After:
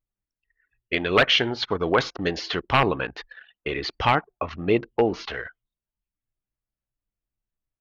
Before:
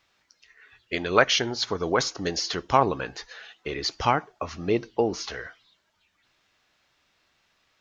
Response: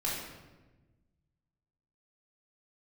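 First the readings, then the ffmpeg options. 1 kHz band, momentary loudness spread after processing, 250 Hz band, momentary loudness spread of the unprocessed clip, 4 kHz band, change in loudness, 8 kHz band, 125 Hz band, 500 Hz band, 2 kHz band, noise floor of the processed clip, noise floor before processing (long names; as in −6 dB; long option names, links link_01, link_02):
+0.5 dB, 14 LU, +3.0 dB, 15 LU, +2.5 dB, +2.0 dB, can't be measured, +3.5 dB, +2.0 dB, +4.0 dB, below −85 dBFS, −70 dBFS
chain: -af "aeval=exprs='0.237*(abs(mod(val(0)/0.237+3,4)-2)-1)':channel_layout=same,anlmdn=0.631,highshelf=frequency=4500:width_type=q:width=1.5:gain=-13,volume=3dB"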